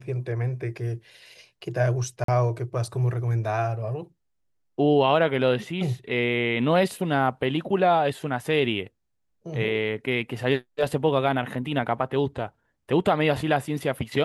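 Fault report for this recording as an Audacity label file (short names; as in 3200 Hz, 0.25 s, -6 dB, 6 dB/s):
2.240000	2.280000	gap 43 ms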